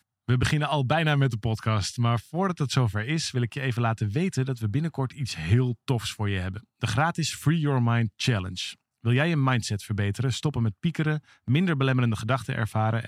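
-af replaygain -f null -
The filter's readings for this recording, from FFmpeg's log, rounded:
track_gain = +8.1 dB
track_peak = 0.243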